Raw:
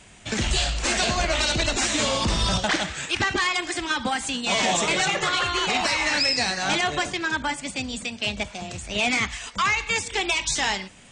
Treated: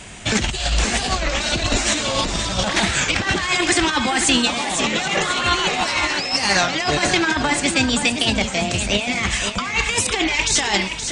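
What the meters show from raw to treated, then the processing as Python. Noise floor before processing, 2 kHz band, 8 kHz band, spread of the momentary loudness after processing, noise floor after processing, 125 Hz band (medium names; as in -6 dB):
-44 dBFS, +4.0 dB, +6.0 dB, 4 LU, -26 dBFS, +5.5 dB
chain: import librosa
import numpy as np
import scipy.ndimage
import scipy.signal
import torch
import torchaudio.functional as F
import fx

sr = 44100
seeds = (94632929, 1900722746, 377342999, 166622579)

y = fx.over_compress(x, sr, threshold_db=-27.0, ratio=-0.5)
y = fx.echo_feedback(y, sr, ms=522, feedback_pct=37, wet_db=-8)
y = fx.record_warp(y, sr, rpm=33.33, depth_cents=160.0)
y = y * librosa.db_to_amplitude(8.0)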